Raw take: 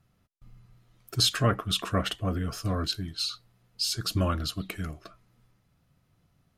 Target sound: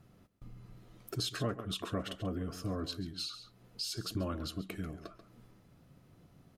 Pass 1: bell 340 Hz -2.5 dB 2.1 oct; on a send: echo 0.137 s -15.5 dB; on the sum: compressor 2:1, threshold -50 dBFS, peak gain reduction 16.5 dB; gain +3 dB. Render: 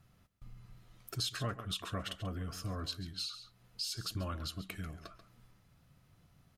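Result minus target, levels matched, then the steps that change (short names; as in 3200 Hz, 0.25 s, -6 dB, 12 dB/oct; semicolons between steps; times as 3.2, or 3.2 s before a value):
250 Hz band -5.0 dB
change: bell 340 Hz +9 dB 2.1 oct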